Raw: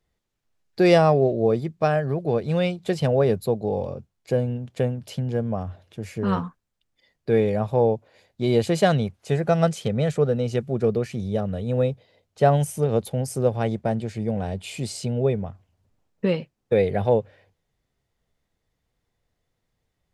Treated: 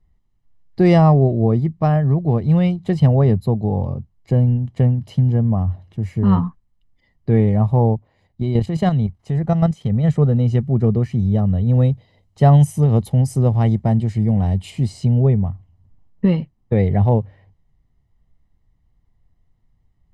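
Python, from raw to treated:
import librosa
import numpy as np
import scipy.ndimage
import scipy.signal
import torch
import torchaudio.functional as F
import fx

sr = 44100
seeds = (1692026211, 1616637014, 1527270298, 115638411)

y = fx.level_steps(x, sr, step_db=9, at=(7.95, 10.03), fade=0.02)
y = fx.high_shelf(y, sr, hz=3600.0, db=8.5, at=(11.74, 14.71))
y = fx.tilt_eq(y, sr, slope=-3.0)
y = y + 0.53 * np.pad(y, (int(1.0 * sr / 1000.0), 0))[:len(y)]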